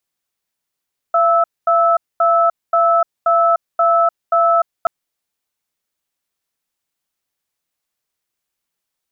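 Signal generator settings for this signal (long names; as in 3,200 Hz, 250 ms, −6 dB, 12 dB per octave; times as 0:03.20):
tone pair in a cadence 678 Hz, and 1,310 Hz, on 0.30 s, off 0.23 s, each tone −13 dBFS 3.73 s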